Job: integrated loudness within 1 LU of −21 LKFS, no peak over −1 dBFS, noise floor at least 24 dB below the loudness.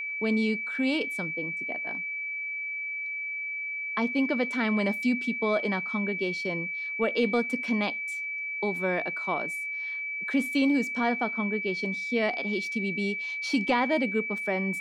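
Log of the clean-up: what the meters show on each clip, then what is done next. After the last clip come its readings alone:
interfering tone 2,300 Hz; level of the tone −31 dBFS; integrated loudness −28.0 LKFS; sample peak −14.5 dBFS; target loudness −21.0 LKFS
→ notch filter 2,300 Hz, Q 30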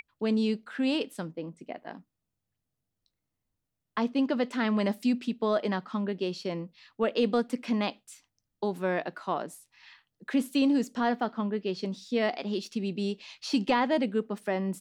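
interfering tone none found; integrated loudness −30.0 LKFS; sample peak −16.0 dBFS; target loudness −21.0 LKFS
→ level +9 dB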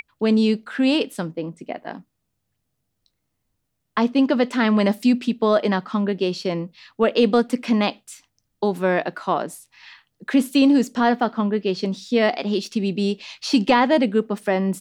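integrated loudness −21.0 LKFS; sample peak −7.0 dBFS; background noise floor −75 dBFS

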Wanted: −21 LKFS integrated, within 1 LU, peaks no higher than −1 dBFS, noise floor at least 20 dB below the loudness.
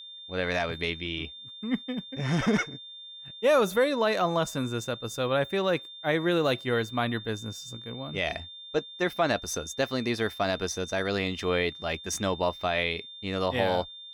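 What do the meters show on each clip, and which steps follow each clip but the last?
interfering tone 3,600 Hz; level of the tone −42 dBFS; integrated loudness −28.5 LKFS; sample peak −13.0 dBFS; target loudness −21.0 LKFS
→ notch filter 3,600 Hz, Q 30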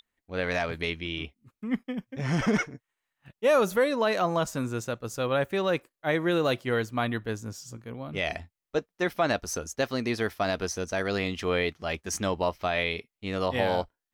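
interfering tone none found; integrated loudness −29.0 LKFS; sample peak −13.0 dBFS; target loudness −21.0 LKFS
→ level +8 dB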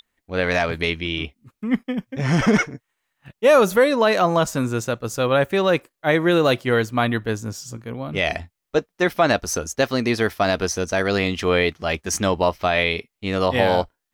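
integrated loudness −21.0 LKFS; sample peak −5.0 dBFS; background noise floor −81 dBFS

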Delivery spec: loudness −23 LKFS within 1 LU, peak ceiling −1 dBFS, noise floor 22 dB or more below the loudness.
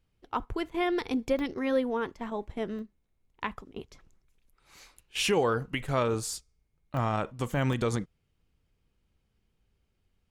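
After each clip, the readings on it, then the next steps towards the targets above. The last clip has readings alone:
number of dropouts 5; longest dropout 1.1 ms; integrated loudness −31.0 LKFS; sample peak −16.0 dBFS; target loudness −23.0 LKFS
→ repair the gap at 0:01.39/0:02.79/0:06.34/0:06.97/0:07.73, 1.1 ms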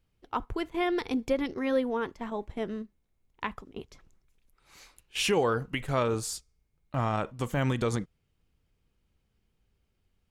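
number of dropouts 0; integrated loudness −31.0 LKFS; sample peak −16.0 dBFS; target loudness −23.0 LKFS
→ level +8 dB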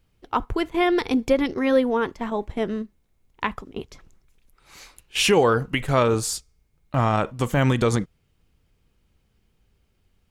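integrated loudness −23.0 LKFS; sample peak −8.0 dBFS; background noise floor −67 dBFS

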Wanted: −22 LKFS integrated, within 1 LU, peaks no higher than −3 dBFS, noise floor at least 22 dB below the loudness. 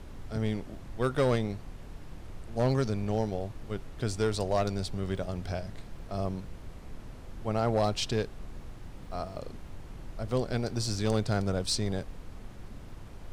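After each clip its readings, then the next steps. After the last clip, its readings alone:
share of clipped samples 0.4%; peaks flattened at −19.5 dBFS; background noise floor −46 dBFS; target noise floor −54 dBFS; integrated loudness −32.0 LKFS; sample peak −19.5 dBFS; target loudness −22.0 LKFS
→ clipped peaks rebuilt −19.5 dBFS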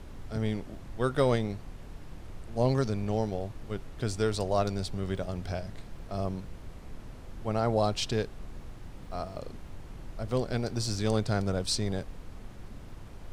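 share of clipped samples 0.0%; background noise floor −46 dBFS; target noise floor −54 dBFS
→ noise reduction from a noise print 8 dB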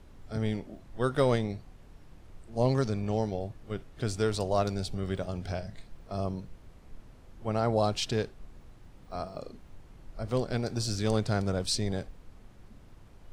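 background noise floor −53 dBFS; target noise floor −54 dBFS
→ noise reduction from a noise print 6 dB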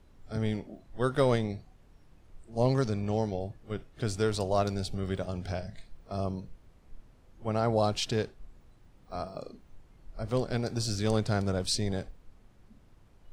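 background noise floor −59 dBFS; integrated loudness −31.5 LKFS; sample peak −13.0 dBFS; target loudness −22.0 LKFS
→ level +9.5 dB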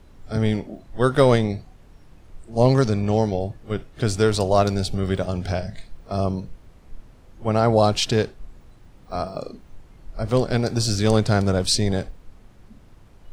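integrated loudness −22.0 LKFS; sample peak −3.5 dBFS; background noise floor −49 dBFS

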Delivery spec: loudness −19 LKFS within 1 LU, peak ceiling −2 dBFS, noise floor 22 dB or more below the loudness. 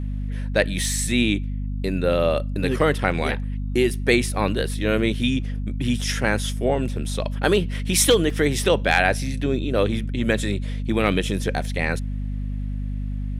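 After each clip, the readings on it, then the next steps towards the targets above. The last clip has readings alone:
number of dropouts 1; longest dropout 2.5 ms; mains hum 50 Hz; hum harmonics up to 250 Hz; level of the hum −24 dBFS; integrated loudness −22.5 LKFS; sample peak −3.0 dBFS; target loudness −19.0 LKFS
→ repair the gap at 0:08.30, 2.5 ms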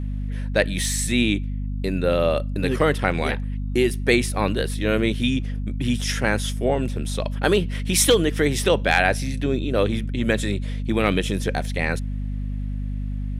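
number of dropouts 0; mains hum 50 Hz; hum harmonics up to 250 Hz; level of the hum −24 dBFS
→ mains-hum notches 50/100/150/200/250 Hz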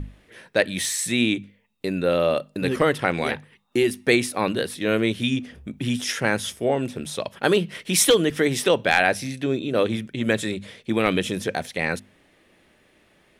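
mains hum none found; integrated loudness −23.0 LKFS; sample peak −3.5 dBFS; target loudness −19.0 LKFS
→ level +4 dB
brickwall limiter −2 dBFS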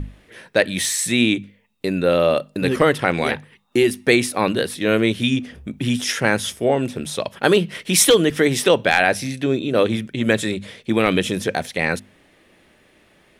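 integrated loudness −19.5 LKFS; sample peak −2.0 dBFS; background noise floor −56 dBFS

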